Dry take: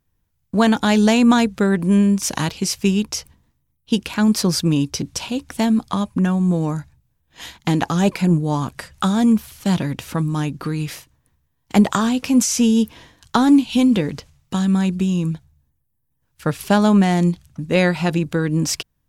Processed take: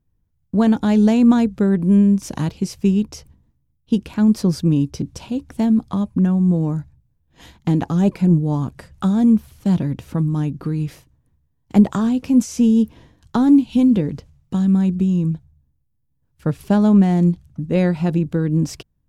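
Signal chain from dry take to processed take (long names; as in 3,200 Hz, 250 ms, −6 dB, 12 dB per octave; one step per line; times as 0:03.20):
tilt shelving filter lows +7.5 dB, about 670 Hz
level −4.5 dB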